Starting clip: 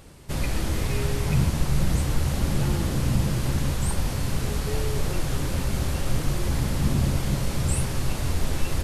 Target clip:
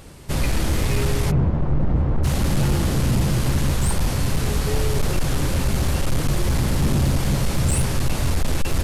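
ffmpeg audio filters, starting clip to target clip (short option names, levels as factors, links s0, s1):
-filter_complex "[0:a]asplit=3[s0][s1][s2];[s0]afade=t=out:st=1.3:d=0.02[s3];[s1]lowpass=1000,afade=t=in:st=1.3:d=0.02,afade=t=out:st=2.23:d=0.02[s4];[s2]afade=t=in:st=2.23:d=0.02[s5];[s3][s4][s5]amix=inputs=3:normalize=0,asoftclip=type=hard:threshold=0.106,volume=1.88"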